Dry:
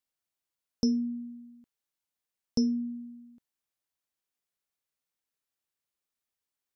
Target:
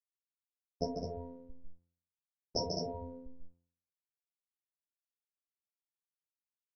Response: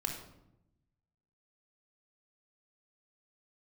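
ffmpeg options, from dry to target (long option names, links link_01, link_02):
-filter_complex "[0:a]aeval=exprs='if(lt(val(0),0),0.251*val(0),val(0))':channel_layout=same,equalizer=frequency=250:width_type=o:width=0.67:gain=-8,equalizer=frequency=630:width_type=o:width=0.67:gain=10,equalizer=frequency=1600:width_type=o:width=0.67:gain=-7,equalizer=frequency=4000:width_type=o:width=0.67:gain=4,afftfilt=real='re*gte(hypot(re,im),0.0178)':imag='im*gte(hypot(re,im),0.0178)':win_size=1024:overlap=0.75,acrossover=split=4500[link_01][link_02];[link_02]acompressor=threshold=-56dB:ratio=4:attack=1:release=60[link_03];[link_01][link_03]amix=inputs=2:normalize=0,lowshelf=frequency=66:gain=6.5,asplit=2[link_04][link_05];[link_05]aecho=0:1:142.9|207:0.562|0.631[link_06];[link_04][link_06]amix=inputs=2:normalize=0,dynaudnorm=framelen=360:gausssize=7:maxgain=11.5dB,anlmdn=15.8,afftfilt=real='hypot(re,im)*cos(PI*b)':imag='0':win_size=2048:overlap=0.75,asplit=2[link_07][link_08];[link_08]adelay=37,volume=-13dB[link_09];[link_07][link_09]amix=inputs=2:normalize=0,afftfilt=real='re*lt(hypot(re,im),0.178)':imag='im*lt(hypot(re,im),0.178)':win_size=1024:overlap=0.75,bandreject=frequency=86.16:width_type=h:width=4,bandreject=frequency=172.32:width_type=h:width=4,bandreject=frequency=258.48:width_type=h:width=4,bandreject=frequency=344.64:width_type=h:width=4,bandreject=frequency=430.8:width_type=h:width=4,bandreject=frequency=516.96:width_type=h:width=4,bandreject=frequency=603.12:width_type=h:width=4,bandreject=frequency=689.28:width_type=h:width=4,bandreject=frequency=775.44:width_type=h:width=4,bandreject=frequency=861.6:width_type=h:width=4,bandreject=frequency=947.76:width_type=h:width=4,bandreject=frequency=1033.92:width_type=h:width=4,bandreject=frequency=1120.08:width_type=h:width=4,bandreject=frequency=1206.24:width_type=h:width=4,bandreject=frequency=1292.4:width_type=h:width=4,bandreject=frequency=1378.56:width_type=h:width=4,bandreject=frequency=1464.72:width_type=h:width=4,bandreject=frequency=1550.88:width_type=h:width=4,bandreject=frequency=1637.04:width_type=h:width=4,bandreject=frequency=1723.2:width_type=h:width=4,bandreject=frequency=1809.36:width_type=h:width=4,bandreject=frequency=1895.52:width_type=h:width=4,volume=5dB"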